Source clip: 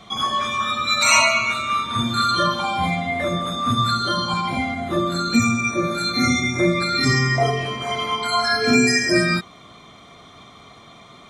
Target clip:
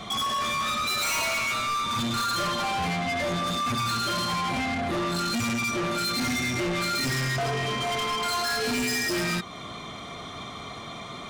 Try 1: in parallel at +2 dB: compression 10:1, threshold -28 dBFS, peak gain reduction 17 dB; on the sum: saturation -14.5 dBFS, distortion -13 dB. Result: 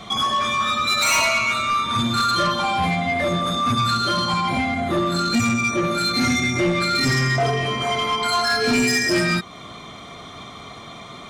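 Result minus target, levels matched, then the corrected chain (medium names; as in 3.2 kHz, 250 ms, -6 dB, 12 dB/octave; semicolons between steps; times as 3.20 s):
saturation: distortion -7 dB
in parallel at +2 dB: compression 10:1, threshold -28 dBFS, peak gain reduction 17 dB; on the sum: saturation -25.5 dBFS, distortion -5 dB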